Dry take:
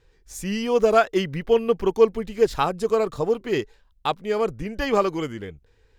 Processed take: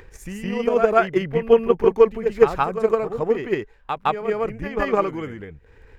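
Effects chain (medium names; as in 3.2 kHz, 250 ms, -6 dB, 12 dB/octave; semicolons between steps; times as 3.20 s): resonant high shelf 2.9 kHz -8.5 dB, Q 1.5; on a send: reverse echo 162 ms -6 dB; on the sum: transient shaper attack +9 dB, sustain +5 dB; upward compressor, threshold -29 dBFS; trim -4 dB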